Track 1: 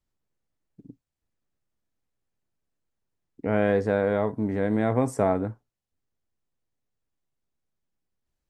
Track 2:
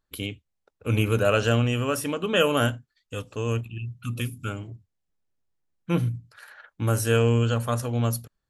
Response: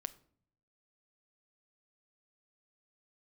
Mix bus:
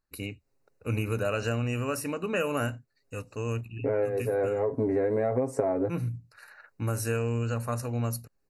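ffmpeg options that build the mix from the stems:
-filter_complex "[0:a]equalizer=f=480:t=o:w=0.98:g=11,aecho=1:1:7.4:0.91,acompressor=threshold=-15dB:ratio=2.5,adelay=400,volume=2dB[a];[1:a]volume=-4dB,asplit=2[b][c];[c]apad=whole_len=392790[d];[a][d]sidechaincompress=threshold=-42dB:ratio=8:attack=40:release=304[e];[e][b]amix=inputs=2:normalize=0,asuperstop=centerf=3300:order=12:qfactor=3.9,acompressor=threshold=-24dB:ratio=6"

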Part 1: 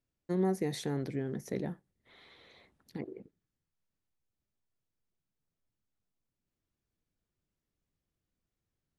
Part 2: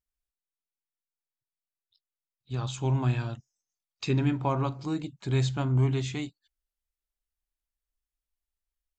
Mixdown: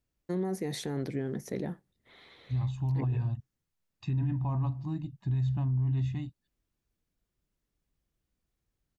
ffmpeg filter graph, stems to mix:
-filter_complex "[0:a]volume=2.5dB[a];[1:a]highpass=45,aemphasis=mode=reproduction:type=riaa,aecho=1:1:1.1:0.86,volume=-12dB[b];[a][b]amix=inputs=2:normalize=0,alimiter=limit=-24dB:level=0:latency=1:release=20"

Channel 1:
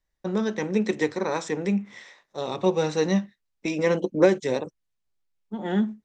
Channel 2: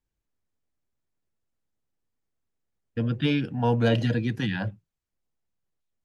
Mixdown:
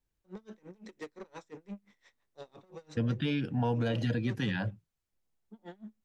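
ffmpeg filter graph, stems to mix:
-filter_complex "[0:a]asoftclip=type=tanh:threshold=-23dB,aeval=exprs='val(0)*pow(10,-30*(0.5-0.5*cos(2*PI*5.8*n/s))/20)':c=same,volume=-12dB[a];[1:a]alimiter=limit=-22.5dB:level=0:latency=1:release=199,volume=0dB,asplit=2[b][c];[c]apad=whole_len=266533[d];[a][d]sidechaincompress=threshold=-29dB:ratio=8:attack=16:release=187[e];[e][b]amix=inputs=2:normalize=0"

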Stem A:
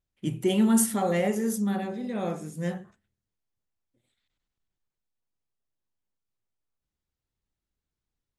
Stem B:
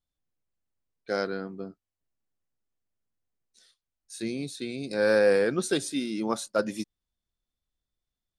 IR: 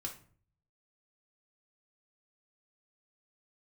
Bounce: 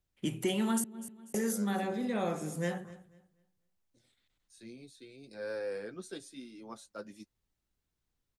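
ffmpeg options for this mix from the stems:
-filter_complex "[0:a]volume=2.5dB,asplit=3[a][b][c];[a]atrim=end=0.84,asetpts=PTS-STARTPTS,afade=t=out:st=0.836:d=0.004:c=hsin[d];[b]atrim=start=0.84:end=1.34,asetpts=PTS-STARTPTS,volume=0[e];[c]atrim=start=1.34,asetpts=PTS-STARTPTS,afade=t=in:d=0.004:c=hsin[f];[d][e][f]concat=n=3:v=0:a=1,asplit=2[g][h];[h]volume=-22dB[i];[1:a]flanger=delay=7.2:depth=3.4:regen=-28:speed=0.97:shape=sinusoidal,adelay=400,volume=-13.5dB[j];[i]aecho=0:1:244|488|732|976:1|0.24|0.0576|0.0138[k];[g][j][k]amix=inputs=3:normalize=0,acrossover=split=230|730[l][m][n];[l]acompressor=threshold=-41dB:ratio=4[o];[m]acompressor=threshold=-34dB:ratio=4[p];[n]acompressor=threshold=-36dB:ratio=4[q];[o][p][q]amix=inputs=3:normalize=0"

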